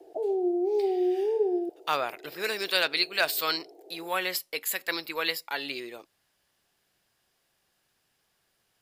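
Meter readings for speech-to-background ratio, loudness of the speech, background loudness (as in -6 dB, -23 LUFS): -1.5 dB, -29.0 LUFS, -27.5 LUFS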